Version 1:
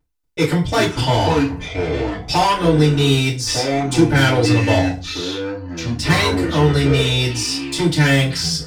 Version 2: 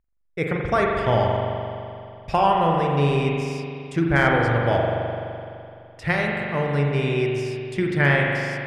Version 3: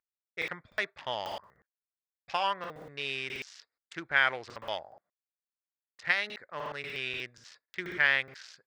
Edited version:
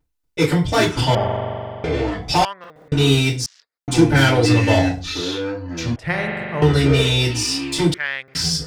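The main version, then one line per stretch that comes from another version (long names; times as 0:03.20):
1
0:01.15–0:01.84: punch in from 2
0:02.45–0:02.92: punch in from 3
0:03.46–0:03.88: punch in from 3
0:05.96–0:06.62: punch in from 2
0:07.94–0:08.35: punch in from 3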